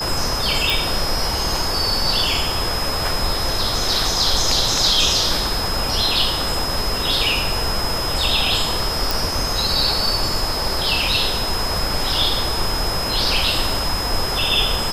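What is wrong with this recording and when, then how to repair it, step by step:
tone 5100 Hz -24 dBFS
0.7 pop
9.11 pop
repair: de-click; notch 5100 Hz, Q 30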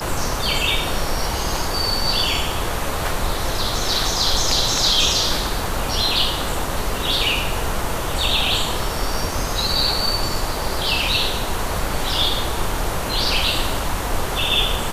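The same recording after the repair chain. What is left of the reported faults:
none

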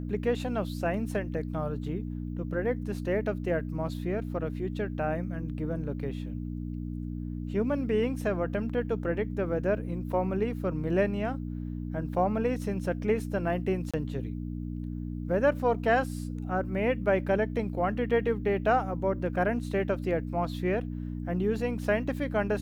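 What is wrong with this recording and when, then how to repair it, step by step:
hum 60 Hz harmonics 5 -35 dBFS
13.91–13.94 gap 26 ms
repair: de-hum 60 Hz, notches 5; interpolate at 13.91, 26 ms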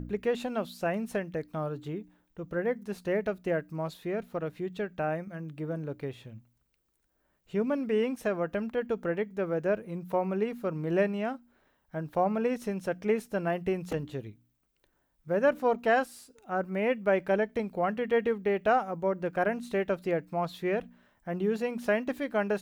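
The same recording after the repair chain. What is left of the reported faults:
none

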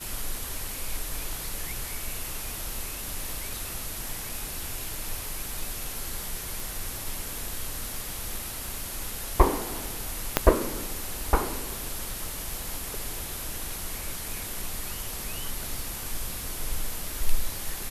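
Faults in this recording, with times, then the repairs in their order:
6.6 pop
10.37 pop -2 dBFS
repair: de-click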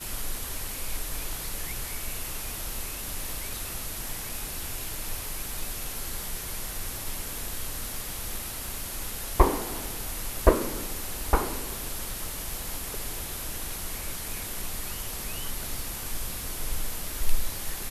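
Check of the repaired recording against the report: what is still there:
10.37 pop

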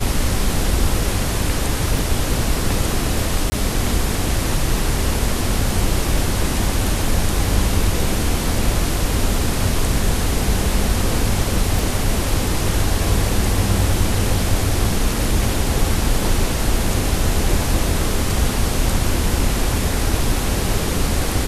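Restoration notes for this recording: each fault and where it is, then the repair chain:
1.98 gap 3.3 ms
3.5–3.52 gap 20 ms
11.79 pop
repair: de-click; interpolate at 1.98, 3.3 ms; interpolate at 3.5, 20 ms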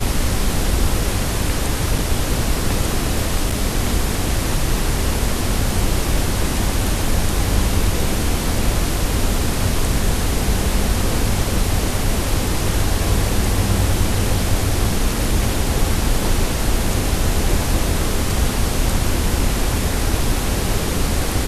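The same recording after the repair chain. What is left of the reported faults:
11.79 pop

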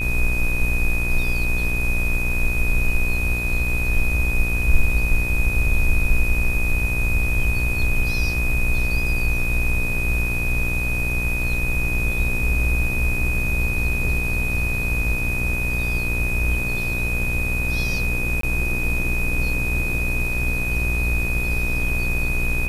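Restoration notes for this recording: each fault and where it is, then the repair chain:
buzz 60 Hz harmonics 36 -26 dBFS
tone 2500 Hz -24 dBFS
18.41–18.43 gap 23 ms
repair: de-hum 60 Hz, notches 36; notch 2500 Hz, Q 30; interpolate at 18.41, 23 ms

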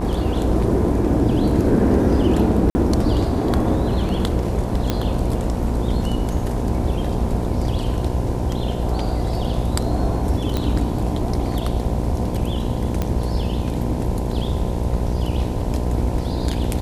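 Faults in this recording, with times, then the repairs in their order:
buzz 60 Hz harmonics 17 -24 dBFS
2.7–2.75 gap 50 ms
4.9 pop -6 dBFS
10.57 pop -9 dBFS
13.02 pop -9 dBFS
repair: de-click; de-hum 60 Hz, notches 17; interpolate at 2.7, 50 ms

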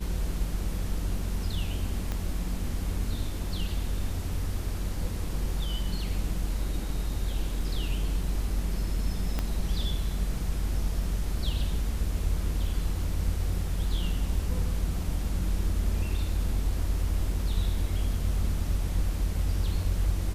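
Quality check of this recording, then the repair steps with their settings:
2.12 pop -18 dBFS
9.39 pop -15 dBFS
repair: de-click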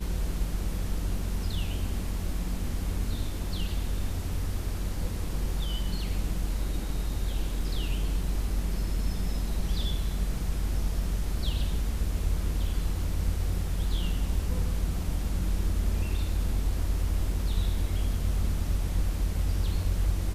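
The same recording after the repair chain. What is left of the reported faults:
2.12 pop
9.39 pop

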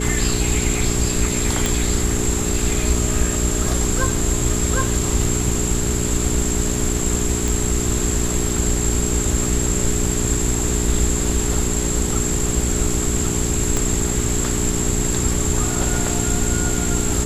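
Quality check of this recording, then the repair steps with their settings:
hum 60 Hz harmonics 7 -24 dBFS
1.66 pop
7.48 pop
13.77 pop -7 dBFS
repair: de-click; de-hum 60 Hz, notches 7

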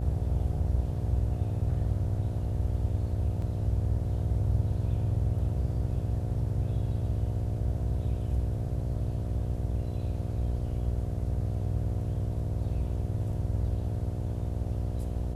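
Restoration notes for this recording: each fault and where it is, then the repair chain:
buzz 60 Hz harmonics 12 -34 dBFS
3.42 gap 2.4 ms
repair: de-hum 60 Hz, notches 12; interpolate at 3.42, 2.4 ms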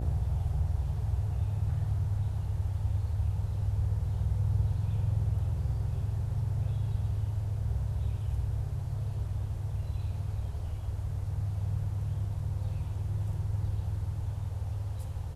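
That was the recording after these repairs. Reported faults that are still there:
none

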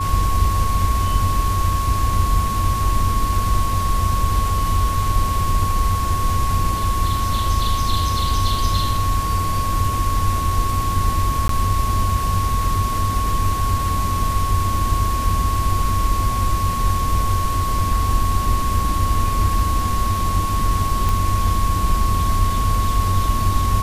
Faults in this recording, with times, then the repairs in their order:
tone 1100 Hz -22 dBFS
11.48–11.49 gap 13 ms
21.09 pop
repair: de-click; notch 1100 Hz, Q 30; interpolate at 11.48, 13 ms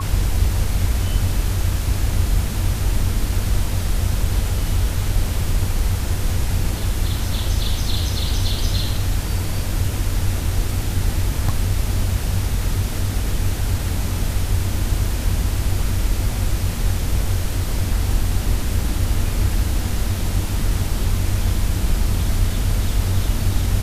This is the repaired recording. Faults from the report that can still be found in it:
none

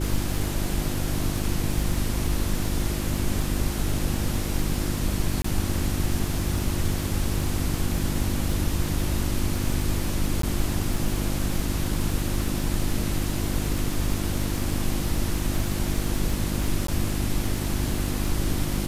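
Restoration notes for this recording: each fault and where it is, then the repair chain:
crackle 48/s -29 dBFS
hum 50 Hz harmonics 7 -29 dBFS
5.42–5.44 gap 24 ms
10.42–10.43 gap 13 ms
16.87–16.88 gap 13 ms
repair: de-click; de-hum 50 Hz, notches 7; interpolate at 5.42, 24 ms; interpolate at 10.42, 13 ms; interpolate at 16.87, 13 ms

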